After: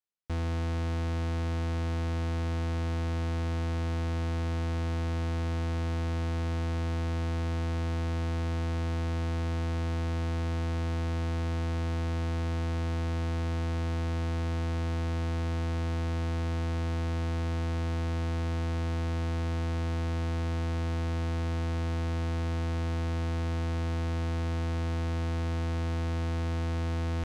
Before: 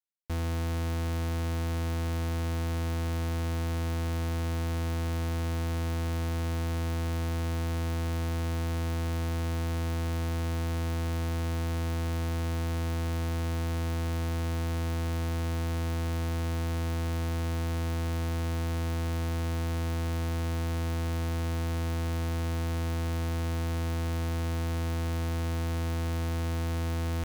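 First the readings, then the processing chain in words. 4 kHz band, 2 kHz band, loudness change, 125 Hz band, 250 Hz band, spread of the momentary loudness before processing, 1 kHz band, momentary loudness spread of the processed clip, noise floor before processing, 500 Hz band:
-2.0 dB, -0.5 dB, 0.0 dB, 0.0 dB, 0.0 dB, 0 LU, -0.5 dB, 0 LU, -30 dBFS, 0.0 dB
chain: air absorption 72 m

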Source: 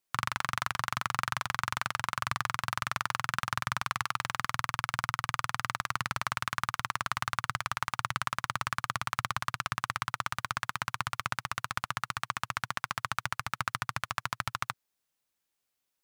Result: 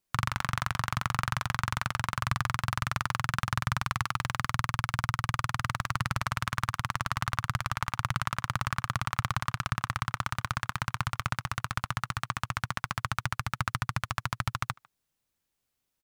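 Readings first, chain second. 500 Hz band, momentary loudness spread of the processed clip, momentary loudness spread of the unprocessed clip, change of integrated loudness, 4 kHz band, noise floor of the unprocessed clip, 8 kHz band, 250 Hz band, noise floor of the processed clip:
+1.5 dB, 3 LU, 2 LU, +1.5 dB, 0.0 dB, -83 dBFS, 0.0 dB, +7.5 dB, -83 dBFS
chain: low shelf 230 Hz +12 dB; speakerphone echo 0.15 s, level -24 dB

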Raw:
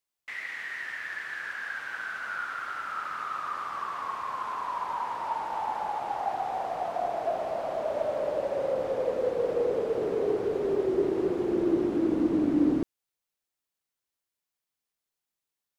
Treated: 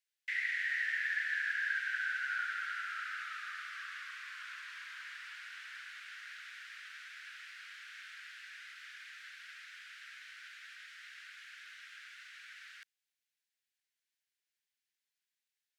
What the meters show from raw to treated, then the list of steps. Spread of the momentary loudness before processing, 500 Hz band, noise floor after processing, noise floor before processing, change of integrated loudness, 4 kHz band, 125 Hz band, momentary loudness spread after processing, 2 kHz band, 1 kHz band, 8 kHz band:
8 LU, under -40 dB, under -85 dBFS, under -85 dBFS, -9.5 dB, +0.5 dB, under -40 dB, 17 LU, +1.0 dB, -19.0 dB, n/a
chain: steep high-pass 1500 Hz 72 dB/oct; high shelf 6900 Hz -10.5 dB; gain +2.5 dB

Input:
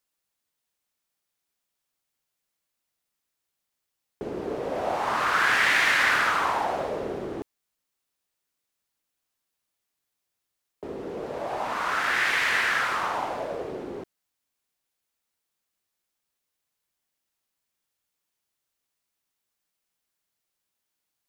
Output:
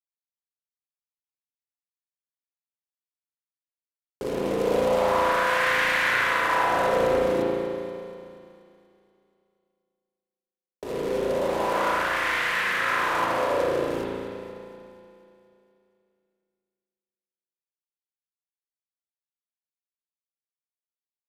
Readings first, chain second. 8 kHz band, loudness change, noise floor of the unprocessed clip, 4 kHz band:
-1.5 dB, +0.5 dB, -83 dBFS, -1.0 dB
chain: de-hum 175.8 Hz, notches 3; dynamic EQ 880 Hz, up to -5 dB, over -39 dBFS, Q 0.97; in parallel at -2.5 dB: negative-ratio compressor -32 dBFS, ratio -0.5; on the sum: small resonant body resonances 520/1000 Hz, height 10 dB, ringing for 50 ms; companded quantiser 4-bit; on a send: echo with dull and thin repeats by turns 0.12 s, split 990 Hz, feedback 75%, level -9.5 dB; on the sum: spring tank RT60 2.1 s, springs 35 ms, chirp 30 ms, DRR -5 dB; downsampling 32000 Hz; Doppler distortion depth 0.16 ms; gain -7.5 dB

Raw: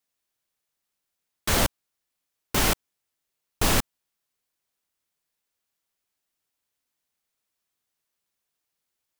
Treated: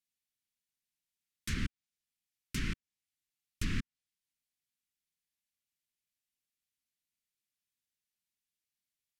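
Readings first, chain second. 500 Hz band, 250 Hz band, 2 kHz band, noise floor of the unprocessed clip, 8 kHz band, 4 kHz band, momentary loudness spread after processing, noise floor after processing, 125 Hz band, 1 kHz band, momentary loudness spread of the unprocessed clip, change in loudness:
-25.0 dB, -9.5 dB, -13.0 dB, -83 dBFS, -20.0 dB, -16.5 dB, 8 LU, under -85 dBFS, -8.0 dB, -25.0 dB, 8 LU, -14.5 dB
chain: treble ducked by the level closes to 2900 Hz, closed at -18.5 dBFS; Chebyshev band-stop 230–2100 Hz, order 2; dynamic EQ 3400 Hz, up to -6 dB, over -46 dBFS, Q 1.2; gain -7.5 dB

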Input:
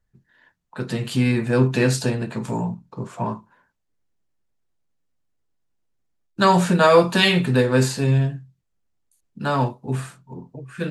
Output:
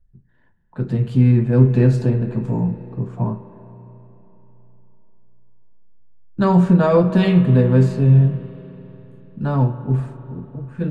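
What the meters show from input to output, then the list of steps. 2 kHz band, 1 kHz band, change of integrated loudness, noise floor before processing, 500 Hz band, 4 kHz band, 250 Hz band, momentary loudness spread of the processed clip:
-9.0 dB, -5.0 dB, +3.5 dB, -73 dBFS, -0.5 dB, -13.5 dB, +5.0 dB, 18 LU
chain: tilt -4.5 dB/oct; spring tank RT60 3.8 s, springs 33/49 ms, chirp 80 ms, DRR 11 dB; gain -5.5 dB

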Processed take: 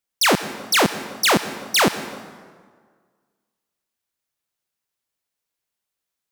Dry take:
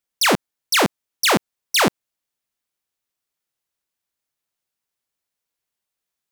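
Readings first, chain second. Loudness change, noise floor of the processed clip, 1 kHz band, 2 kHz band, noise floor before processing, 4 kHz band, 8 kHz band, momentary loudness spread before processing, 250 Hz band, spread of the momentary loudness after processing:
0.0 dB, -84 dBFS, +0.5 dB, +0.5 dB, -84 dBFS, 0.0 dB, 0.0 dB, 4 LU, +0.5 dB, 13 LU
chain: plate-style reverb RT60 1.7 s, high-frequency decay 0.65×, pre-delay 80 ms, DRR 12 dB

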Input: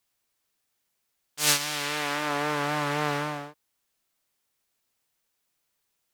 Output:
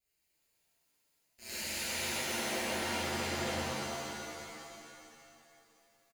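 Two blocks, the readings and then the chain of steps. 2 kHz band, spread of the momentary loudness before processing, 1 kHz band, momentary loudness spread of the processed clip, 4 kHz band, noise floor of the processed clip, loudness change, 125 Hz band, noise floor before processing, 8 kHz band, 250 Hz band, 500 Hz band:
-7.0 dB, 14 LU, -9.5 dB, 16 LU, -7.0 dB, -78 dBFS, -9.0 dB, -8.5 dB, -78 dBFS, -7.5 dB, -5.5 dB, -6.0 dB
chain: minimum comb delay 0.42 ms; reverse; compressor 12:1, threshold -34 dBFS, peak gain reduction 18.5 dB; reverse; ring modulator 61 Hz; on a send: echo 0.183 s -8 dB; on the sum: crackling interface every 0.13 s, samples 512, repeat, from 0.32; shimmer reverb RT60 2.6 s, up +7 st, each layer -2 dB, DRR -12 dB; gain -8.5 dB

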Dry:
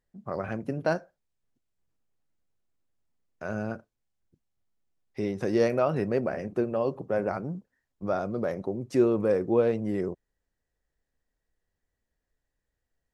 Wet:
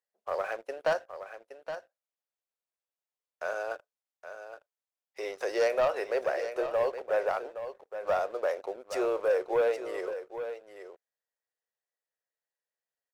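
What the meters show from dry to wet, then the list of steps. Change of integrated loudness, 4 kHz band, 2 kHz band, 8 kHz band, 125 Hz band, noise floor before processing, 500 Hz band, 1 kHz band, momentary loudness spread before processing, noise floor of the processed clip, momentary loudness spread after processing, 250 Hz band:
-3.0 dB, +3.5 dB, +2.5 dB, n/a, under -20 dB, -84 dBFS, -1.0 dB, +1.5 dB, 13 LU, under -85 dBFS, 18 LU, -15.0 dB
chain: steep high-pass 470 Hz 36 dB/oct; sample leveller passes 2; on a send: echo 0.819 s -10.5 dB; on the sum: gain -4.5 dB

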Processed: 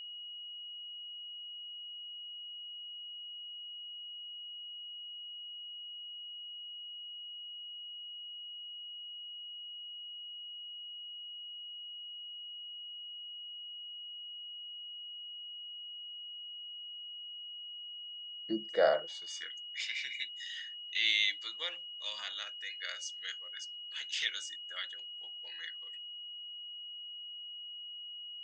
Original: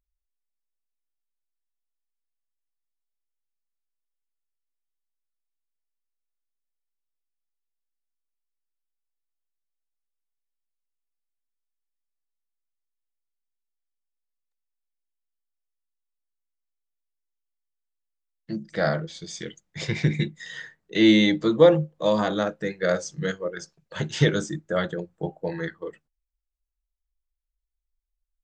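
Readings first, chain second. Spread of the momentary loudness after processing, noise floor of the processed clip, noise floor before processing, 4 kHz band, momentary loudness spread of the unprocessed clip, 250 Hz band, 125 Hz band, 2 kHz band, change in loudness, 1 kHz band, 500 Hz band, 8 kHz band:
8 LU, -46 dBFS, -82 dBFS, +2.5 dB, 20 LU, -24.0 dB, under -35 dB, -6.5 dB, -15.5 dB, -11.5 dB, -14.0 dB, -7.0 dB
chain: high-pass sweep 83 Hz -> 2600 Hz, 17.69–19.86; whine 2900 Hz -35 dBFS; gain -8 dB

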